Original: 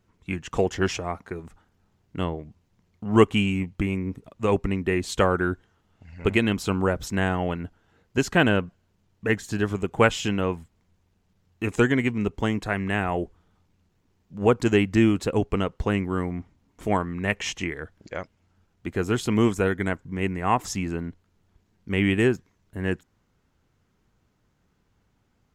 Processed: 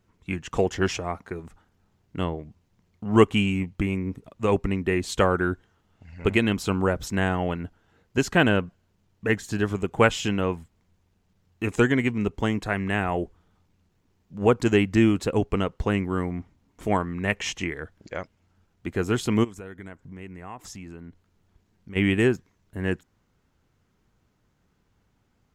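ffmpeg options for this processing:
ffmpeg -i in.wav -filter_complex "[0:a]asplit=3[link_01][link_02][link_03];[link_01]afade=type=out:start_time=19.43:duration=0.02[link_04];[link_02]acompressor=threshold=-41dB:ratio=3:attack=3.2:release=140:knee=1:detection=peak,afade=type=in:start_time=19.43:duration=0.02,afade=type=out:start_time=21.95:duration=0.02[link_05];[link_03]afade=type=in:start_time=21.95:duration=0.02[link_06];[link_04][link_05][link_06]amix=inputs=3:normalize=0" out.wav

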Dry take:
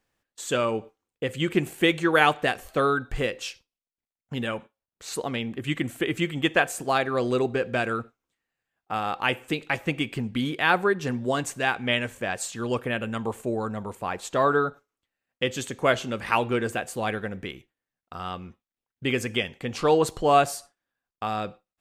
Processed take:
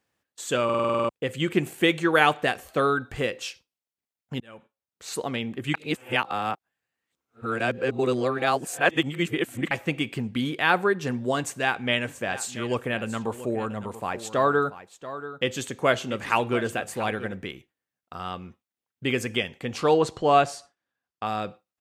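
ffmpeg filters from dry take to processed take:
ffmpeg -i in.wav -filter_complex "[0:a]asplit=3[link_01][link_02][link_03];[link_01]afade=type=out:start_time=12.07:duration=0.02[link_04];[link_02]aecho=1:1:684:0.2,afade=type=in:start_time=12.07:duration=0.02,afade=type=out:start_time=17.33:duration=0.02[link_05];[link_03]afade=type=in:start_time=17.33:duration=0.02[link_06];[link_04][link_05][link_06]amix=inputs=3:normalize=0,asettb=1/sr,asplit=3[link_07][link_08][link_09];[link_07]atrim=end=19.944[link_10];[link_08]atrim=start=19.94:end=21.26,asetpts=PTS-STARTPTS,afade=type=in:duration=0.004:curve=qsin,afade=type=out:start_time=1.316:duration=0.004:curve=qsin,lowpass=6400[link_11];[link_09]atrim=start=21.256[link_12];[link_10][link_11]acrossfade=duration=0.004:curve1=hsin:curve2=qsin[link_13];[link_13][link_12]acrossfade=duration=0.004:curve1=qsin:curve2=hsin,asplit=13[link_14][link_15][link_16][link_17][link_18][link_19][link_20][link_21][link_22][link_23][link_24][link_25][link_26];[link_14]atrim=end=0.692[link_27];[link_15]atrim=start=0.638:end=0.692[link_28];[link_16]atrim=start=0.638:end=0.692[link_29];[link_17]atrim=start=0.638:end=0.692[link_30];[link_18]atrim=start=0.638:end=0.692[link_31];[link_19]atrim=start=0.638:end=0.692[link_32];[link_20]atrim=start=0.638:end=0.692[link_33];[link_21]atrim=start=0.638:end=0.692[link_34];[link_22]atrim=start=0.638:end=0.692[link_35];[link_23]atrim=start=1.088:end=4.4,asetpts=PTS-STARTPTS,afade=type=out:start_time=3.308:duration=0.004:curve=hsin[link_36];[link_24]atrim=start=4.4:end=5.742,asetpts=PTS-STARTPTS,afade=type=in:duration=0.68[link_37];[link_25]atrim=start=5.738:end=9.712,asetpts=PTS-STARTPTS,areverse[link_38];[link_26]atrim=start=9.708[link_39];[link_27][link_28]acrossfade=duration=0.004:curve1=hsin:curve2=hsin[link_40];[link_40][link_29]acrossfade=duration=0.004:curve1=hsin:curve2=hsin[link_41];[link_41][link_30]acrossfade=duration=0.004:curve1=hsin:curve2=hsin[link_42];[link_42][link_31]acrossfade=duration=0.004:curve1=hsin:curve2=hsin[link_43];[link_43][link_32]acrossfade=duration=0.004:curve1=hsin:curve2=hsin[link_44];[link_44][link_33]acrossfade=duration=0.004:curve1=hsin:curve2=hsin[link_45];[link_45][link_34]acrossfade=duration=0.004:curve1=hsin:curve2=hsin[link_46];[link_46][link_35]acrossfade=duration=0.004:curve1=hsin:curve2=hsin[link_47];[link_36][link_37]concat=n=2:v=0:a=1[link_48];[link_47][link_48]acrossfade=duration=0.004:curve1=hsin:curve2=hsin[link_49];[link_49][link_38]acrossfade=duration=0.004:curve1=hsin:curve2=hsin[link_50];[link_50][link_39]acrossfade=duration=0.004:curve1=hsin:curve2=hsin,highpass=74" out.wav

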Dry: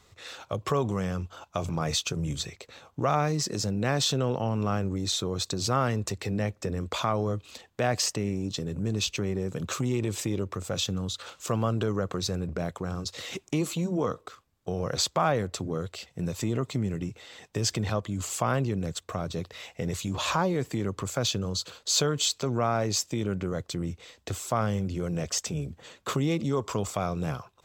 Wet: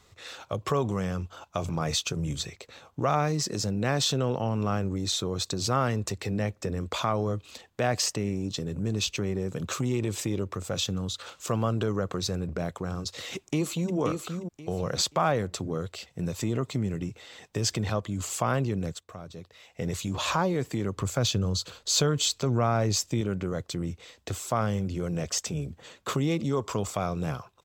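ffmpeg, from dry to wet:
ffmpeg -i in.wav -filter_complex "[0:a]asplit=2[link_01][link_02];[link_02]afade=type=in:start_time=13.35:duration=0.01,afade=type=out:start_time=13.95:duration=0.01,aecho=0:1:530|1060|1590:0.530884|0.132721|0.0331803[link_03];[link_01][link_03]amix=inputs=2:normalize=0,asettb=1/sr,asplit=3[link_04][link_05][link_06];[link_04]atrim=end=20.974[link_07];[link_05]atrim=start=20.97:end=23.21,asetpts=PTS-STARTPTS,afade=type=in:duration=0.004:curve=qsin,afade=type=out:start_time=2.236:duration=0.004:curve=qsin,lowshelf=frequency=110:gain=10.5[link_08];[link_06]atrim=start=23.206[link_09];[link_07][link_08]acrossfade=duration=0.004:curve1=hsin:curve2=qsin[link_10];[link_10][link_09]acrossfade=duration=0.004:curve1=qsin:curve2=hsin,asplit=3[link_11][link_12][link_13];[link_11]atrim=end=19.01,asetpts=PTS-STARTPTS,afade=type=out:start_time=18.88:duration=0.13:silence=0.316228[link_14];[link_12]atrim=start=19.01:end=19.69,asetpts=PTS-STARTPTS,volume=-10dB[link_15];[link_13]atrim=start=19.69,asetpts=PTS-STARTPTS,afade=type=in:duration=0.13:silence=0.316228[link_16];[link_14][link_15][link_16]concat=n=3:v=0:a=1" out.wav

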